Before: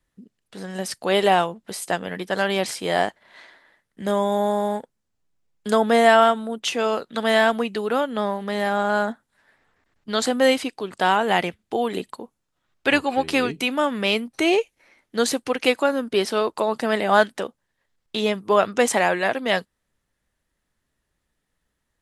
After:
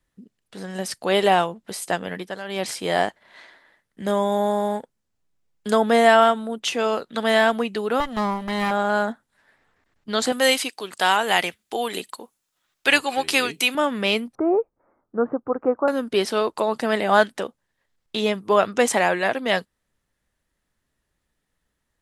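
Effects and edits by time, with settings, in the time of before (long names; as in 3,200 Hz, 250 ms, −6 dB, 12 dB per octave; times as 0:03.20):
0:02.13–0:02.71: duck −12.5 dB, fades 0.27 s
0:08.00–0:08.71: lower of the sound and its delayed copy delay 1 ms
0:10.32–0:13.75: spectral tilt +3 dB per octave
0:14.35–0:15.88: elliptic low-pass filter 1,300 Hz, stop band 70 dB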